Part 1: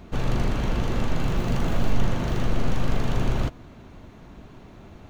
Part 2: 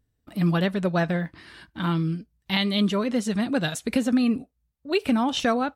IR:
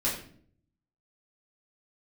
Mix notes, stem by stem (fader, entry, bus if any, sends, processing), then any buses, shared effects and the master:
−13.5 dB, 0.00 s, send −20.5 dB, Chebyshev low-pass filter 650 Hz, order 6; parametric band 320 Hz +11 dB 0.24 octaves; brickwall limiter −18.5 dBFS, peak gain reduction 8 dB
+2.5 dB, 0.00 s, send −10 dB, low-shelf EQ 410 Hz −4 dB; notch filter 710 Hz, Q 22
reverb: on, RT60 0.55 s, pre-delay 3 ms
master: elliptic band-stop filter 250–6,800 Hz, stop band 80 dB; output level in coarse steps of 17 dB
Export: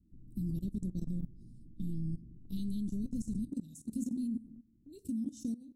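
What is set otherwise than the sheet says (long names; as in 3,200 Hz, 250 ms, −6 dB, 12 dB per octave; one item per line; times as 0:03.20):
stem 2 +2.5 dB → −5.0 dB
reverb return −7.0 dB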